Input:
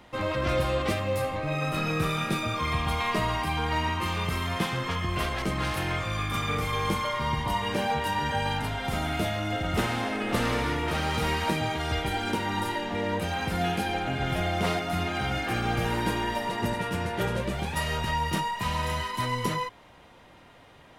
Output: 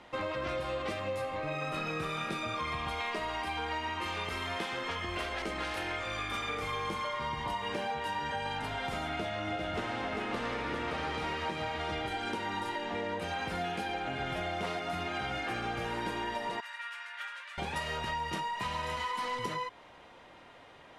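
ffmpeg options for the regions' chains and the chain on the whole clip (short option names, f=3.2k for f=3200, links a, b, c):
-filter_complex "[0:a]asettb=1/sr,asplit=3[a][b][c];[a]atrim=end=2.904[d];[b]atrim=start=2.9:end=6.62,asetpts=PTS-STARTPTS,afade=t=in:d=0.004:c=qsin,afade=t=out:st=3.716:d=0.004:c=qsin,equalizer=f=140:t=o:w=0.69:g=-12.5,bandreject=f=1.1k:w=8[e];[c]atrim=start=6.616[f];[d][e]acrossfade=d=0.004:c1=hsin:c2=qsin[g];[g][f]acrossfade=d=0.004:c1=qsin:c2=hsin,asettb=1/sr,asplit=3[h][i][j];[h]atrim=end=9.084[k];[i]atrim=start=9.08:end=12.08,asetpts=PTS-STARTPTS,afade=t=in:d=0.004:c=qsin,afade=t=out:st=2.996:d=0.004:c=qsin,highshelf=f=8.5k:g=-10.5,aecho=1:1:394:0.531,atrim=end_sample=132300[l];[j]atrim=start=12.076[m];[k][l]acrossfade=d=0.004:c1=hsin:c2=qsin[n];[n][m]acrossfade=d=0.004:c1=qsin:c2=hsin,asettb=1/sr,asplit=3[o][p][q];[o]atrim=end=16.604[r];[p]atrim=start=16.6:end=17.58,asetpts=PTS-STARTPTS,afade=t=in:d=0.004:c=qsin,afade=t=out:st=0.976:d=0.004:c=qsin,highpass=f=1.4k:w=0.5412,highpass=f=1.4k:w=1.3066,highshelf=f=2.6k:g=-11.5[s];[q]atrim=start=17.576[t];[r][s]acrossfade=d=0.004:c1=hsin:c2=qsin[u];[u][t]acrossfade=d=0.004:c1=qsin:c2=hsin,asettb=1/sr,asplit=3[v][w][x];[v]atrim=end=18.964[y];[w]atrim=start=18.96:end=19.39,asetpts=PTS-STARTPTS,afade=t=in:d=0.004:c=qsin,afade=t=out:st=0.426:d=0.004:c=qsin,asoftclip=type=hard:threshold=-30.5dB,bandreject=f=50:t=h:w=6,bandreject=f=100:t=h:w=6,bandreject=f=150:t=h:w=6,bandreject=f=200:t=h:w=6,bandreject=f=250:t=h:w=6,bandreject=f=300:t=h:w=6,bandreject=f=350:t=h:w=6,bandreject=f=400:t=h:w=6,aecho=1:1:4.1:0.88,atrim=end_sample=18963[z];[x]atrim=start=19.386[aa];[y][z]acrossfade=d=0.004:c1=hsin:c2=qsin[ab];[ab][aa]acrossfade=d=0.004:c1=qsin:c2=hsin,lowpass=9.2k,bass=f=250:g=-8,treble=f=4k:g=-3,acompressor=threshold=-32dB:ratio=6"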